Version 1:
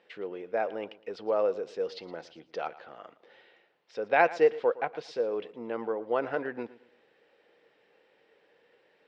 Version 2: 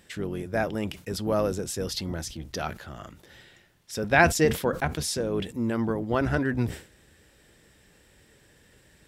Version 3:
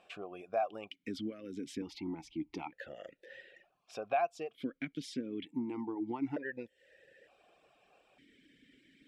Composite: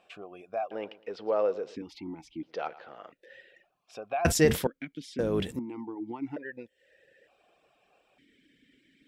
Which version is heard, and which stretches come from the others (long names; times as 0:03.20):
3
0:00.71–0:01.76: punch in from 1
0:02.43–0:03.12: punch in from 1
0:04.25–0:04.67: punch in from 2
0:05.19–0:05.59: punch in from 2